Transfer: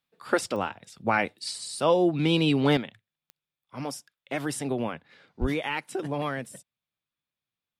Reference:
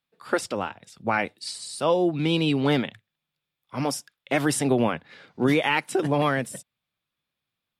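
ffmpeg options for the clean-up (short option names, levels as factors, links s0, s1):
-filter_complex "[0:a]adeclick=t=4,asplit=3[s0][s1][s2];[s0]afade=t=out:st=5.4:d=0.02[s3];[s1]highpass=f=140:w=0.5412,highpass=f=140:w=1.3066,afade=t=in:st=5.4:d=0.02,afade=t=out:st=5.52:d=0.02[s4];[s2]afade=t=in:st=5.52:d=0.02[s5];[s3][s4][s5]amix=inputs=3:normalize=0,asetnsamples=n=441:p=0,asendcmd='2.77 volume volume 7.5dB',volume=1"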